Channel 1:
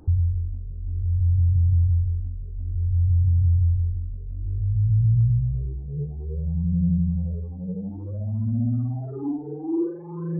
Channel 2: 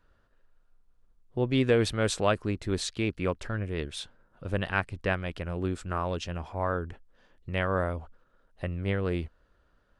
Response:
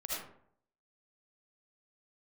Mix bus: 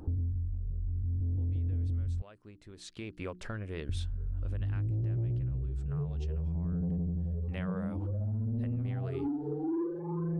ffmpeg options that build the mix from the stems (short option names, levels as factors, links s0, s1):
-filter_complex "[0:a]asoftclip=type=tanh:threshold=0.0944,volume=1.26,asplit=3[s0][s1][s2];[s0]atrim=end=2.22,asetpts=PTS-STARTPTS,afade=t=out:st=2.216:d=0.004:c=hsin[s3];[s1]atrim=start=2.22:end=3.89,asetpts=PTS-STARTPTS,volume=0[s4];[s2]atrim=start=3.89,asetpts=PTS-STARTPTS,afade=t=in:d=0.004:c=hsin[s5];[s3][s4][s5]concat=n=3:v=0:a=1[s6];[1:a]acompressor=threshold=0.0251:ratio=10,bandreject=f=60:t=h:w=6,bandreject=f=120:t=h:w=6,bandreject=f=180:t=h:w=6,bandreject=f=240:t=h:w=6,bandreject=f=300:t=h:w=6,bandreject=f=360:t=h:w=6,volume=2.99,afade=t=in:st=2.75:d=0.54:silence=0.223872,afade=t=out:st=4.3:d=0.78:silence=0.281838,afade=t=in:st=7.09:d=0.56:silence=0.298538[s7];[s6][s7]amix=inputs=2:normalize=0,acompressor=threshold=0.0282:ratio=6"